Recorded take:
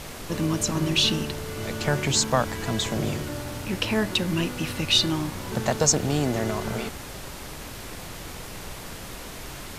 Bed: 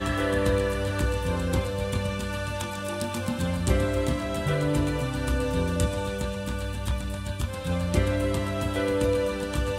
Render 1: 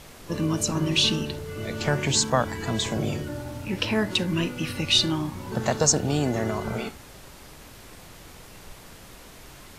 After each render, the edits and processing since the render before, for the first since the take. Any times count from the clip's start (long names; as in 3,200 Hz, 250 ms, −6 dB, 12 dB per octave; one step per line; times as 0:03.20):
noise reduction from a noise print 8 dB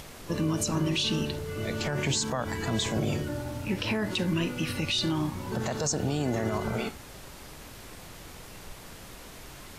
brickwall limiter −19 dBFS, peak gain reduction 11 dB
upward compression, threshold −42 dBFS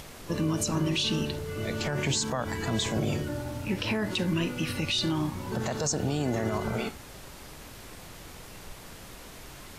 no processing that can be heard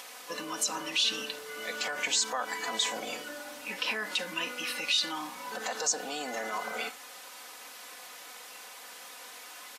high-pass filter 720 Hz 12 dB per octave
comb filter 4 ms, depth 77%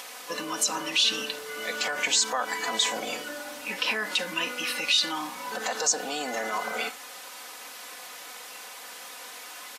level +4.5 dB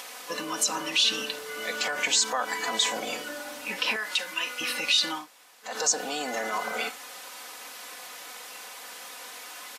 0:03.96–0:04.61: high-pass filter 1,000 Hz 6 dB per octave
0:05.20–0:05.70: fill with room tone, crossfade 0.16 s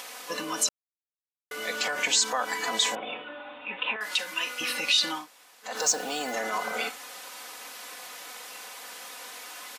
0:00.69–0:01.51: silence
0:02.95–0:04.01: Chebyshev low-pass with heavy ripple 3,700 Hz, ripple 6 dB
0:05.77–0:06.33: floating-point word with a short mantissa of 2 bits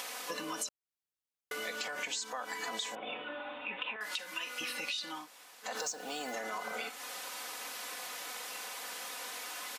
downward compressor 6 to 1, threshold −36 dBFS, peak gain reduction 16 dB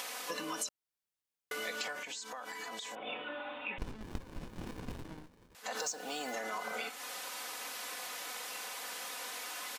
0:01.92–0:03.05: downward compressor, threshold −39 dBFS
0:03.78–0:05.55: windowed peak hold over 65 samples